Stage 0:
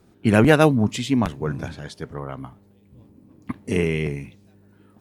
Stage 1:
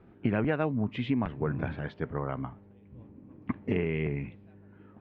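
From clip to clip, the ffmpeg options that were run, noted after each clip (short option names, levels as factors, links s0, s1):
-af "lowpass=f=2600:w=0.5412,lowpass=f=2600:w=1.3066,acompressor=threshold=0.0562:ratio=6"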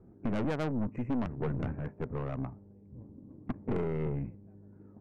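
-af "adynamicsmooth=sensitivity=1.5:basefreq=700,asuperstop=centerf=3800:order=12:qfactor=1.4,aeval=exprs='(tanh(31.6*val(0)+0.5)-tanh(0.5))/31.6':c=same,volume=1.41"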